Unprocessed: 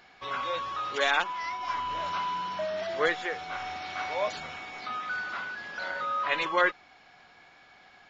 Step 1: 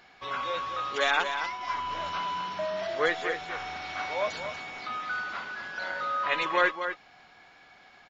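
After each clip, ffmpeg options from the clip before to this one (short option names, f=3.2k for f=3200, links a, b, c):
-af "aecho=1:1:237:0.376"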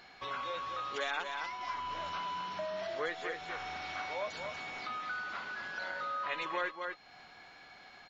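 -af "acompressor=threshold=-41dB:ratio=2,aeval=exprs='val(0)+0.000631*sin(2*PI*4200*n/s)':c=same"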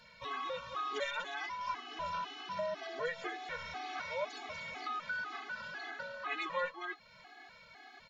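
-af "afftfilt=real='re*gt(sin(2*PI*2*pts/sr)*(1-2*mod(floor(b*sr/1024/220),2)),0)':imag='im*gt(sin(2*PI*2*pts/sr)*(1-2*mod(floor(b*sr/1024/220),2)),0)':win_size=1024:overlap=0.75,volume=2dB"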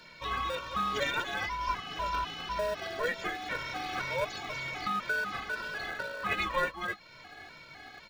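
-filter_complex "[0:a]lowshelf=f=330:g=-11,asplit=2[a][b];[b]acrusher=samples=42:mix=1:aa=0.000001,volume=-10dB[c];[a][c]amix=inputs=2:normalize=0,volume=7dB"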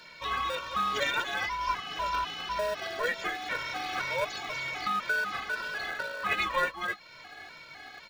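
-af "lowshelf=f=380:g=-7.5,volume=3dB"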